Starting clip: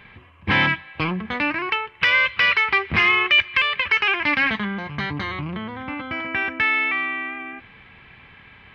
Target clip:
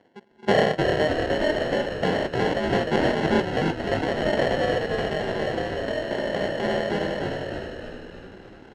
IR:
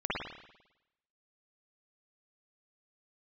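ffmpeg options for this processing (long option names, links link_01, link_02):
-filter_complex "[0:a]afwtdn=0.0355,tiltshelf=frequency=1400:gain=9.5,bandreject=frequency=60:width_type=h:width=6,bandreject=frequency=120:width_type=h:width=6,bandreject=frequency=180:width_type=h:width=6,bandreject=frequency=240:width_type=h:width=6,bandreject=frequency=300:width_type=h:width=6,bandreject=frequency=360:width_type=h:width=6,aecho=1:1:3.1:0.45,areverse,acompressor=mode=upward:threshold=-32dB:ratio=2.5,areverse,aeval=exprs='val(0)*sin(2*PI*300*n/s)':channel_layout=same,acrusher=samples=36:mix=1:aa=0.000001,highpass=200,lowpass=3300,asplit=9[link_01][link_02][link_03][link_04][link_05][link_06][link_07][link_08][link_09];[link_02]adelay=303,afreqshift=-59,volume=-3.5dB[link_10];[link_03]adelay=606,afreqshift=-118,volume=-8.4dB[link_11];[link_04]adelay=909,afreqshift=-177,volume=-13.3dB[link_12];[link_05]adelay=1212,afreqshift=-236,volume=-18.1dB[link_13];[link_06]adelay=1515,afreqshift=-295,volume=-23dB[link_14];[link_07]adelay=1818,afreqshift=-354,volume=-27.9dB[link_15];[link_08]adelay=2121,afreqshift=-413,volume=-32.8dB[link_16];[link_09]adelay=2424,afreqshift=-472,volume=-37.7dB[link_17];[link_01][link_10][link_11][link_12][link_13][link_14][link_15][link_16][link_17]amix=inputs=9:normalize=0"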